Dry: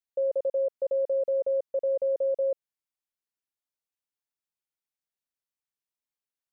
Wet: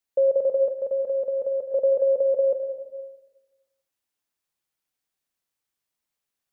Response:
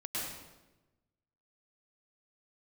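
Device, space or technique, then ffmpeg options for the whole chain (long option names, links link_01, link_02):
compressed reverb return: -filter_complex "[0:a]asplit=2[link_01][link_02];[1:a]atrim=start_sample=2205[link_03];[link_02][link_03]afir=irnorm=-1:irlink=0,acompressor=threshold=-26dB:ratio=6,volume=-5.5dB[link_04];[link_01][link_04]amix=inputs=2:normalize=0,asettb=1/sr,asplit=3[link_05][link_06][link_07];[link_05]atrim=end=0.744[link_08];[link_06]atrim=start=0.74:end=1.72,asetpts=PTS-STARTPTS,afade=type=in:duration=0.004:curve=qsin,afade=type=out:start_time=0.976:duration=0.004:curve=qsin,equalizer=frequency=500:width_type=o:width=2:gain=-5[link_09];[link_07]atrim=start=1.716[link_10];[link_08][link_09]acrossfade=duration=0.004:curve1=hsin:curve2=qsin[link_11];[link_11][link_10]acrossfade=duration=0.004:curve1=qsin:curve2=hsin,volume=5dB"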